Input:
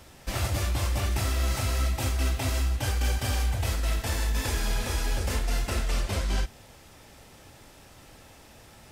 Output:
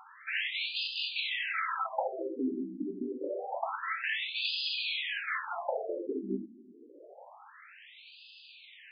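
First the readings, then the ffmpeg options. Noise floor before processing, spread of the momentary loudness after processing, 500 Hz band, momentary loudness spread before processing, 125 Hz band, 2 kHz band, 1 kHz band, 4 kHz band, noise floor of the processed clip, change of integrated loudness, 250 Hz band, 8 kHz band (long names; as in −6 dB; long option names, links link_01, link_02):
−52 dBFS, 20 LU, 0.0 dB, 2 LU, below −25 dB, +1.5 dB, −0.5 dB, +1.5 dB, −55 dBFS, −5.0 dB, −0.5 dB, below −40 dB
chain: -af "afftfilt=real='re*between(b*sr/1024,270*pow(3600/270,0.5+0.5*sin(2*PI*0.27*pts/sr))/1.41,270*pow(3600/270,0.5+0.5*sin(2*PI*0.27*pts/sr))*1.41)':imag='im*between(b*sr/1024,270*pow(3600/270,0.5+0.5*sin(2*PI*0.27*pts/sr))/1.41,270*pow(3600/270,0.5+0.5*sin(2*PI*0.27*pts/sr))*1.41)':win_size=1024:overlap=0.75,volume=7.5dB"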